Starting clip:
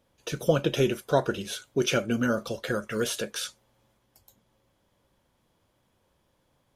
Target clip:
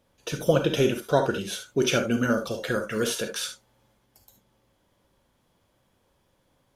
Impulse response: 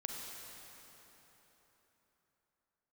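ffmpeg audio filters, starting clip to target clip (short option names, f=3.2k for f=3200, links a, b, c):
-filter_complex "[1:a]atrim=start_sample=2205,atrim=end_sample=3969,asetrate=48510,aresample=44100[a];[0:a][a]afir=irnorm=-1:irlink=0,volume=5.5dB"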